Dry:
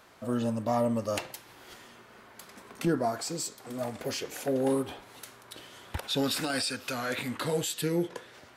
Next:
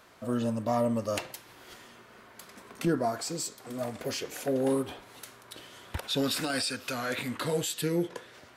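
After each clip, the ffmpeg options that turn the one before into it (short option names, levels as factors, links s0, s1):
-af "bandreject=f=830:w=20"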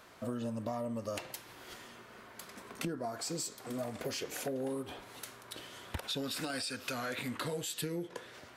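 -af "acompressor=threshold=0.02:ratio=10"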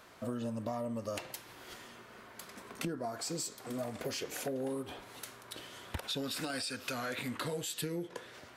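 -af anull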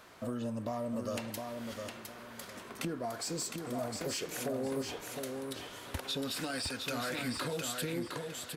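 -filter_complex "[0:a]asplit=2[s0][s1];[s1]asoftclip=type=hard:threshold=0.0158,volume=0.355[s2];[s0][s2]amix=inputs=2:normalize=0,aecho=1:1:710|1420|2130:0.562|0.146|0.038,volume=0.841"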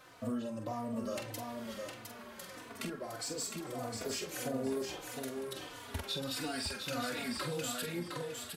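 -filter_complex "[0:a]asplit=2[s0][s1];[s1]adelay=45,volume=0.447[s2];[s0][s2]amix=inputs=2:normalize=0,asplit=2[s3][s4];[s4]adelay=3.4,afreqshift=-1.6[s5];[s3][s5]amix=inputs=2:normalize=1,volume=1.12"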